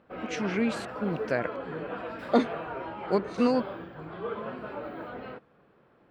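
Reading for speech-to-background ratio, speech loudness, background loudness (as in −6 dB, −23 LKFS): 8.0 dB, −29.5 LKFS, −37.5 LKFS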